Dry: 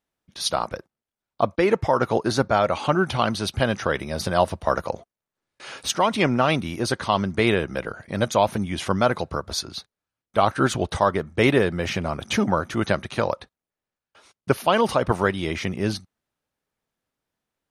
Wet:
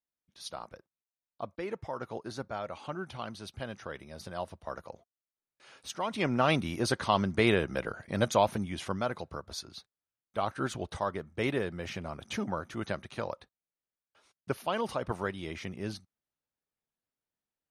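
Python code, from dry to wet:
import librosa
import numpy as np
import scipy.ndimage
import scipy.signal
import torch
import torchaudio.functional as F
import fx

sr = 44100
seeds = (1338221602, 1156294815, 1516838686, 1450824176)

y = fx.gain(x, sr, db=fx.line((5.8, -17.5), (6.49, -5.0), (8.34, -5.0), (9.07, -12.5)))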